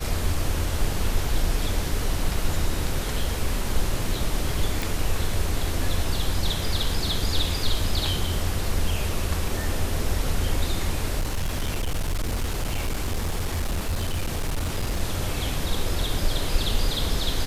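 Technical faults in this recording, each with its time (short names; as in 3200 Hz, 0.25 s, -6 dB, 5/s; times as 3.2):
4.82 pop
11.19–15.01 clipped -21.5 dBFS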